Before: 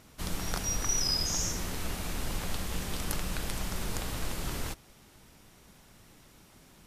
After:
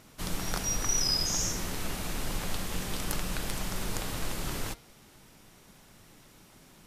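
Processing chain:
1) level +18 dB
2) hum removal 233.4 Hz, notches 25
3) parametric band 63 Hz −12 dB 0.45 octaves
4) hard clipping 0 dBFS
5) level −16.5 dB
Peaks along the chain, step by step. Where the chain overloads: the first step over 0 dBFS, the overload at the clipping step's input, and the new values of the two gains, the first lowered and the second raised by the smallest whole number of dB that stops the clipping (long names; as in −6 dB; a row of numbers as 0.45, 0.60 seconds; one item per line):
+5.5, +5.5, +5.0, 0.0, −16.5 dBFS
step 1, 5.0 dB
step 1 +13 dB, step 5 −11.5 dB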